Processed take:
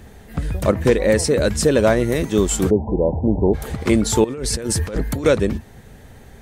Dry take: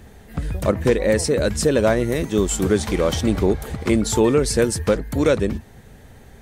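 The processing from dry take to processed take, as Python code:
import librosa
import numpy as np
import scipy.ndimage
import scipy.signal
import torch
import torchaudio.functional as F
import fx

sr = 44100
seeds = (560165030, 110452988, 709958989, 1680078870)

y = fx.cheby1_lowpass(x, sr, hz=1000.0, order=10, at=(2.69, 3.53), fade=0.02)
y = fx.over_compress(y, sr, threshold_db=-26.0, ratio=-1.0, at=(4.24, 5.24))
y = y * 10.0 ** (2.0 / 20.0)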